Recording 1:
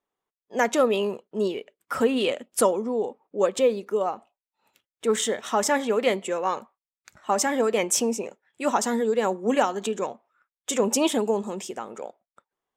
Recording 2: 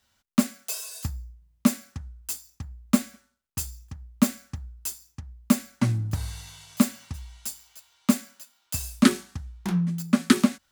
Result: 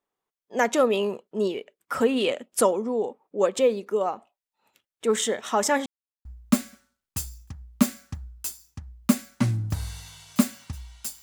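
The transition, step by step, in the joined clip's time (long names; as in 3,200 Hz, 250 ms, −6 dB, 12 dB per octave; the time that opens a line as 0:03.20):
recording 1
0:05.86–0:06.25: silence
0:06.25: continue with recording 2 from 0:02.66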